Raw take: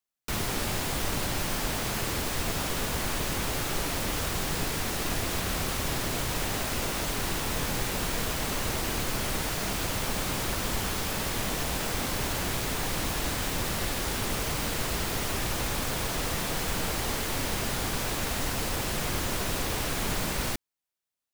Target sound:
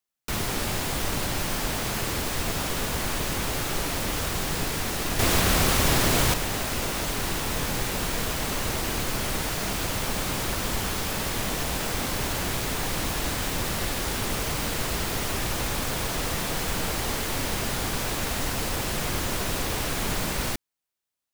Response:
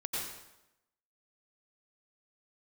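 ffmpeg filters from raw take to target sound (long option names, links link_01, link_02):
-filter_complex "[0:a]asettb=1/sr,asplit=3[link_01][link_02][link_03];[link_01]atrim=end=5.194[link_04];[link_02]atrim=start=5.19:end=6.34,asetpts=PTS-STARTPTS,afade=type=in:duration=0.004:curve=qsin,afade=type=out:start_time=1.146:duration=0.004:curve=qsin,acontrast=71[link_05];[link_03]atrim=start=6.336[link_06];[link_04][link_05]acrossfade=duration=0.004:curve1=hsin:curve2=qsin[link_07];[link_07][link_06]acrossfade=duration=0.004:curve1=qsin:curve2=hsin,volume=2dB"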